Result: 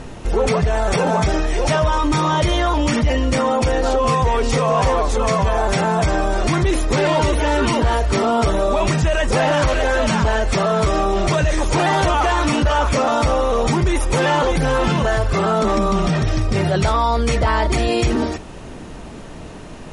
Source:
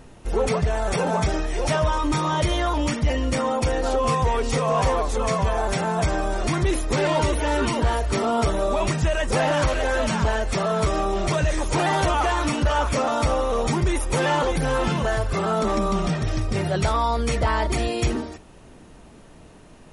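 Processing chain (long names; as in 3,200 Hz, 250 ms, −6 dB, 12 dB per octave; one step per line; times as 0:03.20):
low-pass filter 8,600 Hz 12 dB per octave
in parallel at −1 dB: compressor whose output falls as the input rises −30 dBFS
on the sum: level +2.5 dB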